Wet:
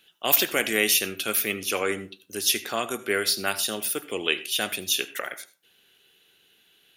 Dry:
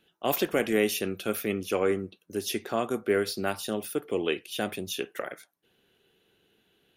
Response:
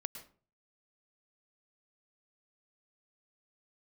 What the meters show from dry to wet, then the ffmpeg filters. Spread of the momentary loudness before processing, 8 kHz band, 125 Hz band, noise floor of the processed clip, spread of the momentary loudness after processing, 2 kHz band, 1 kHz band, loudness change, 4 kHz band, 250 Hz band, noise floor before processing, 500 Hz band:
8 LU, +12.0 dB, -4.5 dB, -63 dBFS, 11 LU, +7.5 dB, +2.0 dB, +5.0 dB, +10.5 dB, -3.5 dB, -71 dBFS, -2.5 dB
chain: -filter_complex "[0:a]tiltshelf=f=1.2k:g=-8.5,asplit=2[a][b];[1:a]atrim=start_sample=2205,asetrate=61740,aresample=44100[c];[b][c]afir=irnorm=-1:irlink=0,volume=0dB[d];[a][d]amix=inputs=2:normalize=0"

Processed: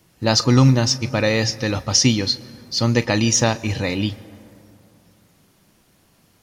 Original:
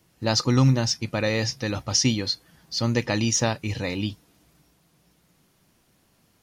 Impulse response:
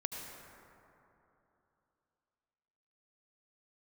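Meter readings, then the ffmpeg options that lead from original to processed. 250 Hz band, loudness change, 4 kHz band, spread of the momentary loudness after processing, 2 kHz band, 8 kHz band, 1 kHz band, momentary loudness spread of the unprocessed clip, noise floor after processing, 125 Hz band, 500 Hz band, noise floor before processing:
+5.5 dB, +5.5 dB, +5.5 dB, 10 LU, +5.5 dB, +5.5 dB, +5.5 dB, 10 LU, -59 dBFS, +5.0 dB, +5.5 dB, -65 dBFS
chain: -filter_complex "[0:a]asplit=2[a][b];[1:a]atrim=start_sample=2205,adelay=41[c];[b][c]afir=irnorm=-1:irlink=0,volume=-17dB[d];[a][d]amix=inputs=2:normalize=0,volume=5.5dB"

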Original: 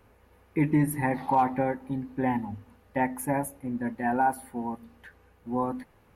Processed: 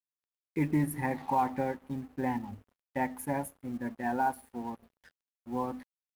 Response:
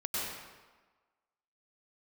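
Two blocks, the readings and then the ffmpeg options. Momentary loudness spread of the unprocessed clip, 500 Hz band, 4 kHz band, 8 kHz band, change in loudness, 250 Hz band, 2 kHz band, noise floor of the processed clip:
12 LU, -5.0 dB, n/a, -5.5 dB, -5.0 dB, -5.0 dB, -5.0 dB, under -85 dBFS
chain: -af "acrusher=bits=8:mode=log:mix=0:aa=0.000001,aeval=exprs='sgn(val(0))*max(abs(val(0))-0.00335,0)':c=same,volume=-4.5dB"

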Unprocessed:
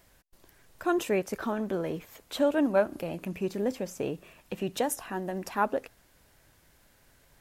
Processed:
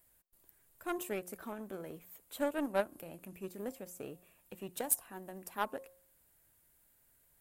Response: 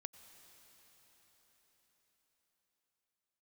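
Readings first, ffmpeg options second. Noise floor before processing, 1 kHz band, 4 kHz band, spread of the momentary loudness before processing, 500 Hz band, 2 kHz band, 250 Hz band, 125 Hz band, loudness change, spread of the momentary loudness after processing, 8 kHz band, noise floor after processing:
-63 dBFS, -9.0 dB, -10.0 dB, 10 LU, -10.5 dB, -8.0 dB, -11.5 dB, -13.5 dB, -9.0 dB, 16 LU, +0.5 dB, -70 dBFS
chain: -af "aexciter=amount=2.4:drive=9.3:freq=7.8k,aeval=exprs='0.447*(cos(1*acos(clip(val(0)/0.447,-1,1)))-cos(1*PI/2))+0.0398*(cos(7*acos(clip(val(0)/0.447,-1,1)))-cos(7*PI/2))':c=same,bandreject=f=179.1:t=h:w=4,bandreject=f=358.2:t=h:w=4,bandreject=f=537.3:t=h:w=4,bandreject=f=716.4:t=h:w=4,bandreject=f=895.5:t=h:w=4,bandreject=f=1.0746k:t=h:w=4,volume=-6dB"

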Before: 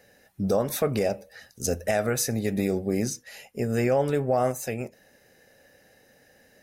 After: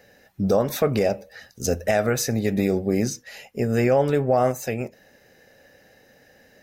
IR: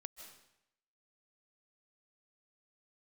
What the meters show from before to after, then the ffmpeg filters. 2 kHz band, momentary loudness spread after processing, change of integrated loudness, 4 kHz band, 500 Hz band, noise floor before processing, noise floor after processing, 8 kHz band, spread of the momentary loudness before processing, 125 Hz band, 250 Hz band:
+4.0 dB, 11 LU, +4.0 dB, +3.0 dB, +4.0 dB, -60 dBFS, -56 dBFS, +0.5 dB, 10 LU, +4.0 dB, +4.0 dB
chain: -af "equalizer=f=10k:w=1.4:g=-9,volume=4dB"

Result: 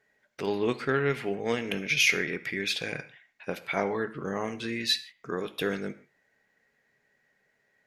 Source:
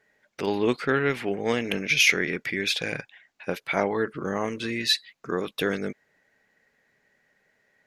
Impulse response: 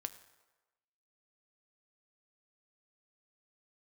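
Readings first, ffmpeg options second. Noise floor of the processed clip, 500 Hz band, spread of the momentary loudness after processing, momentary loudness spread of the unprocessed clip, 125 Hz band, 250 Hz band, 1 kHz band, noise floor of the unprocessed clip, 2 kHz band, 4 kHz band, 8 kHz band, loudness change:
-73 dBFS, -3.0 dB, 13 LU, 13 LU, -2.0 dB, -4.0 dB, -3.5 dB, -73 dBFS, -3.5 dB, -3.5 dB, -3.5 dB, -3.5 dB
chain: -filter_complex "[1:a]atrim=start_sample=2205,afade=t=out:st=0.28:d=0.01,atrim=end_sample=12789,asetrate=61740,aresample=44100[a];[0:a][a]afir=irnorm=-1:irlink=0,volume=1.5dB"

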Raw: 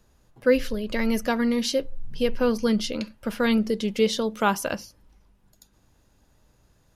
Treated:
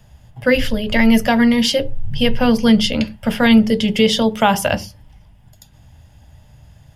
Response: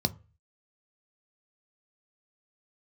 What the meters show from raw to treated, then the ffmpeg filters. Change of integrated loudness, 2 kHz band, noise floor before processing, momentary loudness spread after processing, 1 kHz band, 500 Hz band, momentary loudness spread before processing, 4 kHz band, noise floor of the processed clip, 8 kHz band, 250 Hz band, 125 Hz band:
+9.0 dB, +10.5 dB, -63 dBFS, 8 LU, +9.0 dB, +5.5 dB, 8 LU, +12.0 dB, -48 dBFS, +6.5 dB, +10.5 dB, +12.5 dB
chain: -filter_complex "[0:a]asplit=2[a][b];[1:a]atrim=start_sample=2205,atrim=end_sample=4410,asetrate=34398,aresample=44100[c];[b][c]afir=irnorm=-1:irlink=0,volume=-10.5dB[d];[a][d]amix=inputs=2:normalize=0,alimiter=level_in=11.5dB:limit=-1dB:release=50:level=0:latency=1,volume=-2dB"

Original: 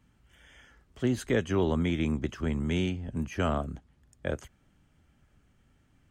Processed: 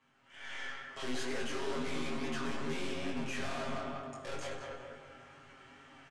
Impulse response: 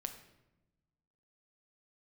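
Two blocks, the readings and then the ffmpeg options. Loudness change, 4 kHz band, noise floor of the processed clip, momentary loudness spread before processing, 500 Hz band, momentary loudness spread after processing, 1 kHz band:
-9.0 dB, 0.0 dB, -64 dBFS, 10 LU, -7.5 dB, 18 LU, -2.5 dB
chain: -filter_complex "[0:a]highpass=710,alimiter=level_in=5dB:limit=-24dB:level=0:latency=1,volume=-5dB,aemphasis=mode=reproduction:type=bsi,asplit=2[a][b];[b]adelay=194,lowpass=f=3.3k:p=1,volume=-9.5dB,asplit=2[c][d];[d]adelay=194,lowpass=f=3.3k:p=1,volume=0.34,asplit=2[e][f];[f]adelay=194,lowpass=f=3.3k:p=1,volume=0.34,asplit=2[g][h];[h]adelay=194,lowpass=f=3.3k:p=1,volume=0.34[i];[a][c][e][g][i]amix=inputs=5:normalize=0,aeval=exprs='(tanh(794*val(0)+0.25)-tanh(0.25))/794':c=same,aecho=1:1:7.4:0.94[j];[1:a]atrim=start_sample=2205,asetrate=22050,aresample=44100[k];[j][k]afir=irnorm=-1:irlink=0,flanger=delay=20:depth=4.1:speed=2.2,dynaudnorm=f=160:g=5:m=13.5dB,lowpass=8.4k,volume=4.5dB"

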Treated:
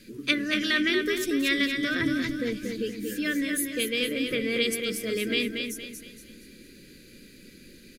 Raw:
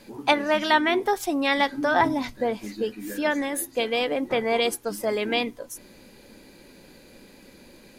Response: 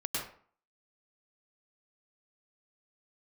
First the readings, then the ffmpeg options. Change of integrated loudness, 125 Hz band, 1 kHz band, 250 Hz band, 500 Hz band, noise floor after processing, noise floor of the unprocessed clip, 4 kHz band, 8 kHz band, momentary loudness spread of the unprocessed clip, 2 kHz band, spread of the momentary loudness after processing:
-2.5 dB, +1.5 dB, -20.5 dB, +0.5 dB, -6.0 dB, -51 dBFS, -51 dBFS, +1.0 dB, +1.0 dB, 9 LU, -0.5 dB, 8 LU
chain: -filter_complex "[0:a]asuperstop=centerf=820:order=4:qfactor=0.66,asplit=2[a][b];[b]aecho=0:1:233|466|699|932|1165:0.531|0.202|0.0767|0.0291|0.0111[c];[a][c]amix=inputs=2:normalize=0"

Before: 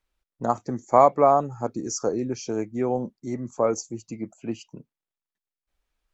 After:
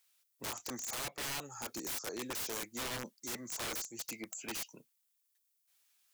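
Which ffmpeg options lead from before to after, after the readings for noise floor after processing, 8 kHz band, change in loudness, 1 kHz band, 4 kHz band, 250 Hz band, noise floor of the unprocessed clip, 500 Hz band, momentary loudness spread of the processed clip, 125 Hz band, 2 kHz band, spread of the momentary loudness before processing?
-79 dBFS, n/a, -15.0 dB, -23.0 dB, +3.5 dB, -17.5 dB, under -85 dBFS, -24.0 dB, 5 LU, -18.0 dB, +1.0 dB, 17 LU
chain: -filter_complex "[0:a]aderivative,acrossover=split=150[a][b];[b]acompressor=threshold=-43dB:ratio=5[c];[a][c]amix=inputs=2:normalize=0,aeval=exprs='(mod(251*val(0)+1,2)-1)/251':c=same,volume=14.5dB"

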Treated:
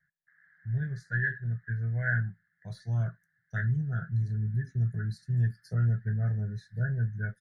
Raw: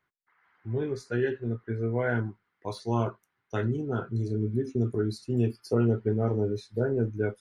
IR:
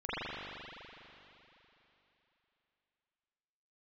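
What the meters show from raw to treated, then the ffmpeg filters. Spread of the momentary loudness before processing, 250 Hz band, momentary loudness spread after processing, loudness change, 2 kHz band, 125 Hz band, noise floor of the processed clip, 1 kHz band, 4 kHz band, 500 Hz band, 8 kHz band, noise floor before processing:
7 LU, -10.0 dB, 7 LU, -1.5 dB, +5.0 dB, +2.5 dB, -77 dBFS, -10.5 dB, under -10 dB, -20.5 dB, n/a, -80 dBFS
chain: -af "firequalizer=gain_entry='entry(100,0);entry(170,10);entry(250,-24);entry(440,-23);entry(650,-11);entry(1000,-27);entry(1700,13);entry(2500,-26);entry(3800,-10)':delay=0.05:min_phase=1"

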